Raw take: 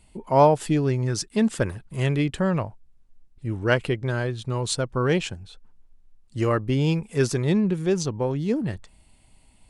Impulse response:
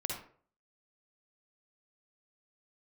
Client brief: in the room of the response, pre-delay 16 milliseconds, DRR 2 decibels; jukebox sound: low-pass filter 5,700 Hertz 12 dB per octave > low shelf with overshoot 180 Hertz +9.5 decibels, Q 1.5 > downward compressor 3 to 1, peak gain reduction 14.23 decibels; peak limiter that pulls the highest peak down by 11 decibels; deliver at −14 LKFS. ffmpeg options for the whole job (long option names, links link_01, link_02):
-filter_complex "[0:a]alimiter=limit=-16dB:level=0:latency=1,asplit=2[link_01][link_02];[1:a]atrim=start_sample=2205,adelay=16[link_03];[link_02][link_03]afir=irnorm=-1:irlink=0,volume=-4.5dB[link_04];[link_01][link_04]amix=inputs=2:normalize=0,lowpass=5700,lowshelf=frequency=180:width_type=q:width=1.5:gain=9.5,acompressor=threshold=-26dB:ratio=3,volume=13dB"